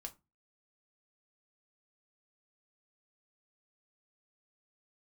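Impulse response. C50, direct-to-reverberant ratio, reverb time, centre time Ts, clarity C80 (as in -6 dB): 19.0 dB, 4.0 dB, 0.25 s, 6 ms, 26.5 dB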